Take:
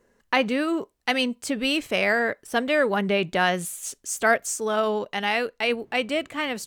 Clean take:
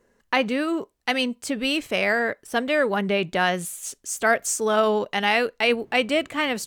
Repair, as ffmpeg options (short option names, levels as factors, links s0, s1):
-af "asetnsamples=n=441:p=0,asendcmd='4.37 volume volume 3.5dB',volume=1"